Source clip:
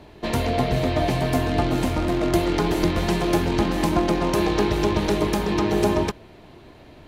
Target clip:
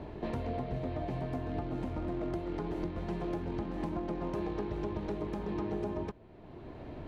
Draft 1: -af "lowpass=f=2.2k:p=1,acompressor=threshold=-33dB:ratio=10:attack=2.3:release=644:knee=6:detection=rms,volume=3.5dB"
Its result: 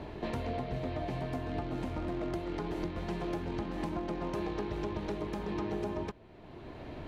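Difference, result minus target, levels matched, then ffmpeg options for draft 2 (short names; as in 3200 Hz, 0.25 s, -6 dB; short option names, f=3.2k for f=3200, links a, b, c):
2000 Hz band +4.0 dB
-af "lowpass=f=900:p=1,acompressor=threshold=-33dB:ratio=10:attack=2.3:release=644:knee=6:detection=rms,volume=3.5dB"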